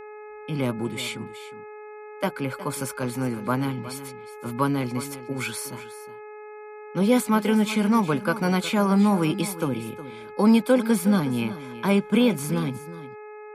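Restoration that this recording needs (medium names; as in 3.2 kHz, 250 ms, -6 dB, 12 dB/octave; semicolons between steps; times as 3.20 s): de-hum 423.3 Hz, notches 6; inverse comb 364 ms -14.5 dB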